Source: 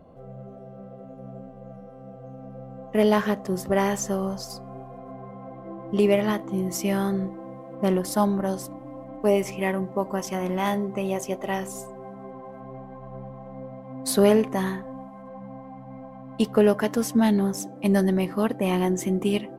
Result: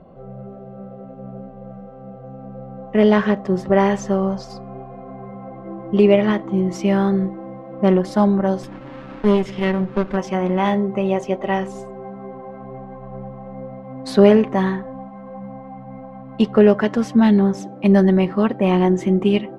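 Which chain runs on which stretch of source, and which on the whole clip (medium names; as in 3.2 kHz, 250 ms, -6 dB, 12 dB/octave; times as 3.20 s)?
8.63–10.17 s: comb filter that takes the minimum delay 0.58 ms + peaking EQ 1.3 kHz -5.5 dB 1.4 oct + tape noise reduction on one side only encoder only
whole clip: low-pass 3.4 kHz 12 dB/octave; comb 5.3 ms, depth 36%; trim +5 dB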